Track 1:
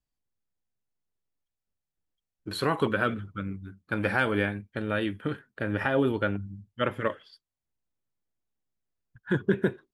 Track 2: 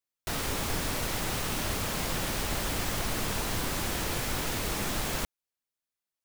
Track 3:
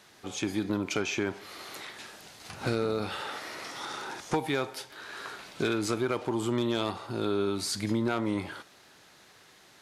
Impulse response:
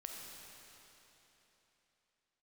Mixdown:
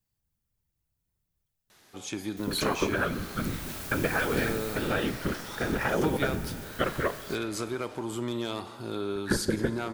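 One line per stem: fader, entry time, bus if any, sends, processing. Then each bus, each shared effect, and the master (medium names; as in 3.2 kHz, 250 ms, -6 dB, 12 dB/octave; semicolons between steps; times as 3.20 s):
+0.5 dB, 0.00 s, send -6 dB, compression, threshold -26 dBFS, peak gain reduction 8.5 dB; whisper effect
3.12 s -21 dB -> 3.74 s -11 dB -> 4.70 s -11 dB -> 4.96 s -18 dB, 2.10 s, no send, none
-5.5 dB, 1.70 s, send -9.5 dB, none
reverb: on, RT60 3.6 s, pre-delay 5 ms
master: treble shelf 10 kHz +11 dB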